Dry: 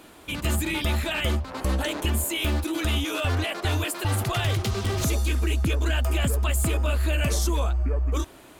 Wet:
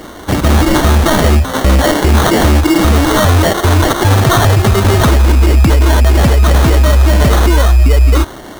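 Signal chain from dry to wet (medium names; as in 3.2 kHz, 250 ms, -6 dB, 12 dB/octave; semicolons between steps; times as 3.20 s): sample-rate reducer 2.5 kHz, jitter 0%; loudness maximiser +19.5 dB; trim -1 dB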